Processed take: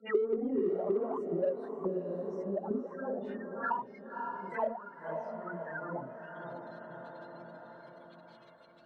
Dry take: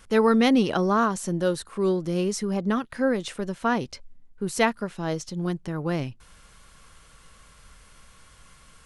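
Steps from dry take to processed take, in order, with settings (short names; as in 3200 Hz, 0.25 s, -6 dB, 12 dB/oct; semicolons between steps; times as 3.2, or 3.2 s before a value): phase scrambler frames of 0.2 s; spectral gate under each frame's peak -20 dB strong; bell 170 Hz +8.5 dB 2 oct; auto-wah 390–4200 Hz, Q 17, down, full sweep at -12.5 dBFS; in parallel at -7.5 dB: soft clip -35 dBFS, distortion -5 dB; on the sum: tilt shelf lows +3.5 dB, about 1500 Hz; on a send: diffused feedback echo 0.565 s, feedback 48%, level -11 dB; on the sum: three-band squash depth 70%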